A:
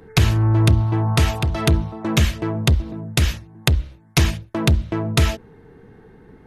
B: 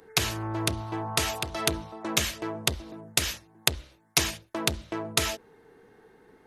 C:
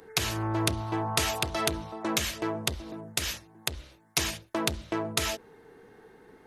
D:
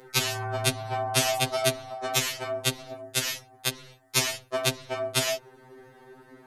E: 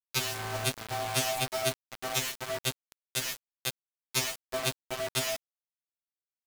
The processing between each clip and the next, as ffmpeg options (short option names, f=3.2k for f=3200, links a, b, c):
-af "bass=f=250:g=-15,treble=f=4k:g=7,volume=-5dB"
-af "alimiter=limit=-12dB:level=0:latency=1:release=215,volume=2.5dB"
-af "afftfilt=real='re*2.45*eq(mod(b,6),0)':imag='im*2.45*eq(mod(b,6),0)':win_size=2048:overlap=0.75,volume=6dB"
-af "acrusher=bits=4:mix=0:aa=0.000001,volume=-5.5dB"